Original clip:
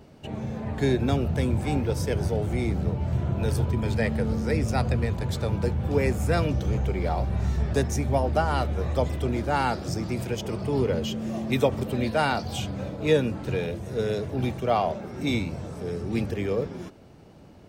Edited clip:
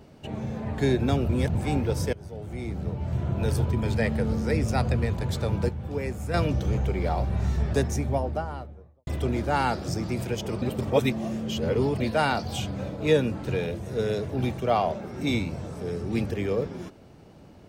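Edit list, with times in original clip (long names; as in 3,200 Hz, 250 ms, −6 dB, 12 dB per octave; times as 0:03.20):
0:01.29–0:01.55: reverse
0:02.13–0:03.45: fade in, from −20 dB
0:05.69–0:06.34: clip gain −7 dB
0:07.71–0:09.07: fade out and dull
0:10.62–0:12.00: reverse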